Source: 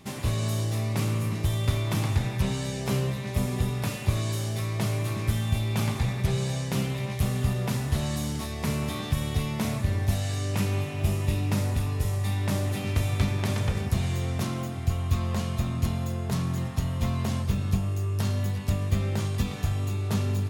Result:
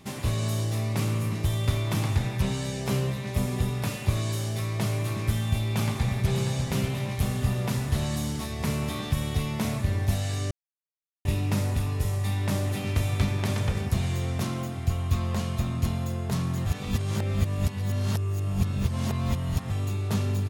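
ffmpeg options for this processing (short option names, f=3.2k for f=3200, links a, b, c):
-filter_complex "[0:a]asplit=2[a][b];[b]afade=t=in:st=5.41:d=0.01,afade=t=out:st=6.29:d=0.01,aecho=0:1:590|1180|1770|2360|2950|3540|4130|4720|5310:0.398107|0.25877|0.1682|0.10933|0.0710646|0.046192|0.0300248|0.0195161|0.0126855[c];[a][c]amix=inputs=2:normalize=0,asplit=5[d][e][f][g][h];[d]atrim=end=10.51,asetpts=PTS-STARTPTS,afade=t=out:st=10.506:d=0.004:c=hsin[i];[e]atrim=start=10.51:end=11.25,asetpts=PTS-STARTPTS,volume=0[j];[f]atrim=start=11.25:end=16.662,asetpts=PTS-STARTPTS,afade=t=in:d=0.004:c=hsin[k];[g]atrim=start=16.658:end=19.702,asetpts=PTS-STARTPTS,areverse[l];[h]atrim=start=19.698[m];[i][j][k]concat=n=3:v=0:a=1[n];[n][l]acrossfade=d=0.004:c1=hsin:c2=hsin[o];[o][m]acrossfade=d=0.004:c1=hsin:c2=hsin"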